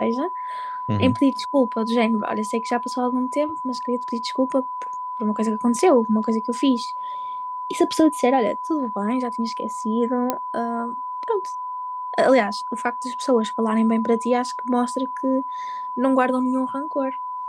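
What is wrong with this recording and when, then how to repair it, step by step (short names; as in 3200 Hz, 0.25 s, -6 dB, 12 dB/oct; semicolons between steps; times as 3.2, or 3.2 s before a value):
tone 1000 Hz -27 dBFS
10.3 pop -7 dBFS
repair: de-click; notch 1000 Hz, Q 30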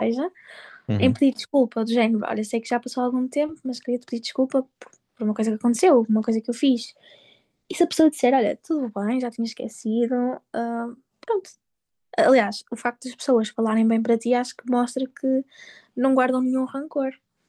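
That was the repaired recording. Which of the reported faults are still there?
none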